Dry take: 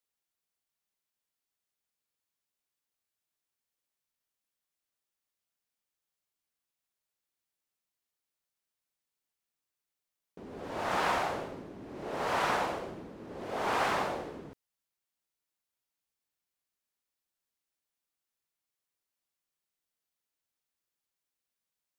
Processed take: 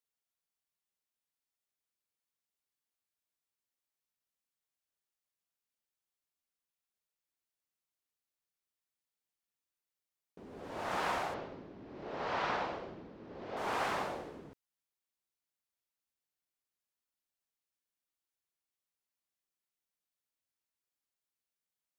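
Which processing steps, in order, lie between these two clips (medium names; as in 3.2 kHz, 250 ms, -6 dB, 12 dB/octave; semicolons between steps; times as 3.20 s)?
11.34–13.57 s: low-pass 5.3 kHz 24 dB/octave; trim -5 dB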